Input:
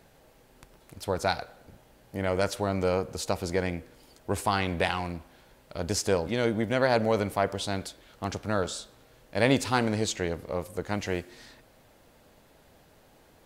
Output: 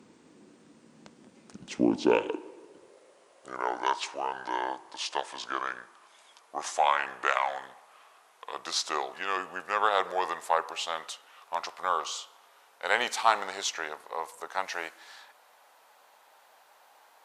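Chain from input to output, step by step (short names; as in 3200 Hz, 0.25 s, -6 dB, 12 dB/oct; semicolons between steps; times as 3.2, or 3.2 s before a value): speed glide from 58% -> 98%; high-pass sweep 210 Hz -> 910 Hz, 1.78–3.9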